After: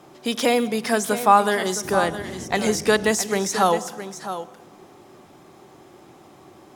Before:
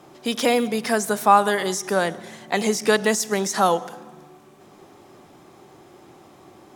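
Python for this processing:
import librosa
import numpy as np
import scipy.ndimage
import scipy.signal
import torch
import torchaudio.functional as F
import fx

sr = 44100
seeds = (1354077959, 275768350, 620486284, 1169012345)

y = fx.dmg_noise_band(x, sr, seeds[0], low_hz=62.0, high_hz=390.0, level_db=-37.0, at=(1.82, 3.12), fade=0.02)
y = y + 10.0 ** (-11.5 / 20.0) * np.pad(y, (int(665 * sr / 1000.0), 0))[:len(y)]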